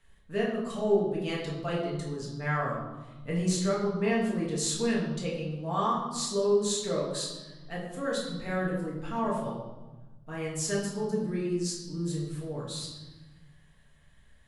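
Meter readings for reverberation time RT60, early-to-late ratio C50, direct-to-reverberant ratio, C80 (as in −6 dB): 1.2 s, 3.0 dB, −5.0 dB, 5.5 dB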